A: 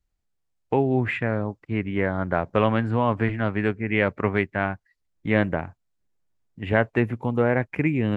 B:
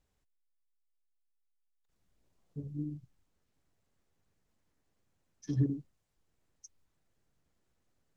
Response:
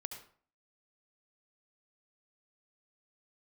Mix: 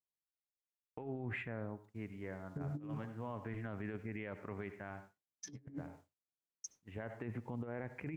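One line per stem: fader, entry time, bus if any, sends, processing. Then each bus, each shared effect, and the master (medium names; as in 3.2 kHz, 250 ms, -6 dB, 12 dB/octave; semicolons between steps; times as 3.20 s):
-16.5 dB, 0.25 s, send -10.5 dB, peaking EQ 5.4 kHz -6 dB 2.1 oct; auto duck -19 dB, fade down 1.20 s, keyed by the second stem
+3.0 dB, 0.00 s, send -12.5 dB, high-pass 150 Hz 12 dB/octave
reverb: on, RT60 0.45 s, pre-delay 64 ms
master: expander -55 dBFS; compressor with a negative ratio -39 dBFS, ratio -0.5; peak limiter -32 dBFS, peak gain reduction 8.5 dB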